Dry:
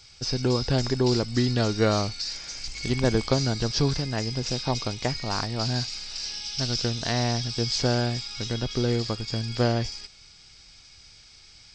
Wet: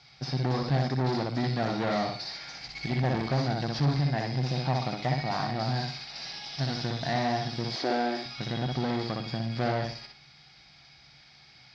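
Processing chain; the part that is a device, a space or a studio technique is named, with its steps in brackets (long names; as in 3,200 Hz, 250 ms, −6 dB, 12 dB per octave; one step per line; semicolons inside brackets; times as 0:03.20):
analogue delay pedal into a guitar amplifier (bucket-brigade delay 62 ms, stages 2,048, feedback 30%, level −4 dB; tube saturation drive 25 dB, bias 0.4; loudspeaker in its box 94–4,400 Hz, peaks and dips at 99 Hz −10 dB, 140 Hz +10 dB, 440 Hz −6 dB, 740 Hz +9 dB, 1,900 Hz +4 dB, 2,900 Hz −4 dB)
0:07.76–0:08.26: low shelf with overshoot 220 Hz −13 dB, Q 3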